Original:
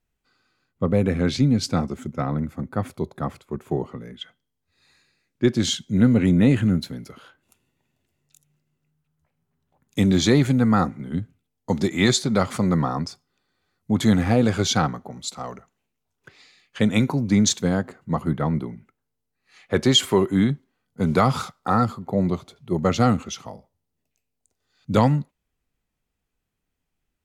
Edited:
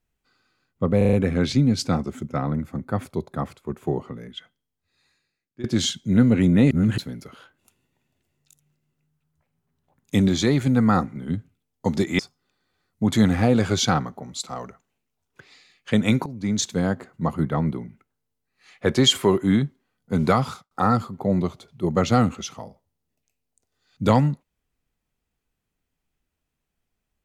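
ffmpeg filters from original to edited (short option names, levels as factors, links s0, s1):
-filter_complex "[0:a]asplit=13[s0][s1][s2][s3][s4][s5][s6][s7][s8][s9][s10][s11][s12];[s0]atrim=end=1.012[s13];[s1]atrim=start=0.968:end=1.012[s14];[s2]atrim=start=0.968:end=1.012[s15];[s3]atrim=start=0.968:end=1.012[s16];[s4]atrim=start=0.968:end=5.48,asetpts=PTS-STARTPTS,afade=t=out:st=3.112:d=1.4:silence=0.1[s17];[s5]atrim=start=5.48:end=6.552,asetpts=PTS-STARTPTS,afade=t=in:d=0.004:c=hsin:silence=0.1[s18];[s6]atrim=start=6.548:end=6.822,asetpts=PTS-STARTPTS,areverse[s19];[s7]atrim=start=6.818:end=10.132[s20];[s8]atrim=start=10.128:end=10.512,asetpts=PTS-STARTPTS,volume=0.708[s21];[s9]atrim=start=10.508:end=12.032[s22];[s10]atrim=start=13.068:end=17.14,asetpts=PTS-STARTPTS,afade=t=out:st=4.068:d=0.004:c=hsin:silence=0.16788[s23];[s11]atrim=start=17.14:end=21.59,asetpts=PTS-STARTPTS,afade=t=in:d=0.65:silence=0.16788,afade=t=out:st=4.03:d=0.42[s24];[s12]atrim=start=21.59,asetpts=PTS-STARTPTS,afade=t=in:d=0.004:c=hsin[s25];[s13][s14]acrossfade=d=0.004:c1=hsin:c2=hsin[s26];[s26][s15]acrossfade=d=0.004:c1=hsin:c2=hsin[s27];[s27][s16]acrossfade=d=0.004:c1=hsin:c2=hsin[s28];[s17][s18]concat=n=2:v=0:a=1[s29];[s28][s29]acrossfade=d=0.004:c1=hsin:c2=hsin[s30];[s30][s19]acrossfade=d=0.004:c1=hsin:c2=hsin[s31];[s31][s20]acrossfade=d=0.004:c1=hsin:c2=hsin[s32];[s32][s21]acrossfade=d=0.004:c1=hsin:c2=hsin[s33];[s33][s22]acrossfade=d=0.004:c1=hsin:c2=hsin[s34];[s23][s24][s25]concat=n=3:v=0:a=1[s35];[s34][s35]acrossfade=d=0.004:c1=hsin:c2=hsin"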